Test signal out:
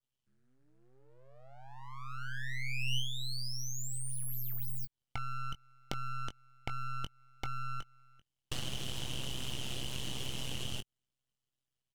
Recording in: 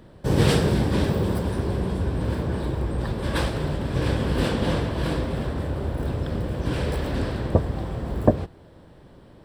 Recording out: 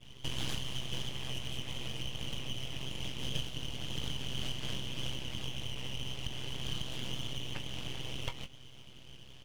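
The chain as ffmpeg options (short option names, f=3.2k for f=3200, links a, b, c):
-filter_complex "[0:a]highpass=f=1.5k:t=q:w=12,adynamicequalizer=threshold=0.0126:dfrequency=3100:dqfactor=1.1:tfrequency=3100:tqfactor=1.1:attack=5:release=100:ratio=0.375:range=2.5:mode=cutabove:tftype=bell,aresample=22050,aresample=44100,aeval=exprs='abs(val(0))':c=same,tremolo=f=130:d=0.857,asplit=2[a][b];[b]adelay=20,volume=-10dB[c];[a][c]amix=inputs=2:normalize=0,acompressor=threshold=-37dB:ratio=4,volume=3.5dB"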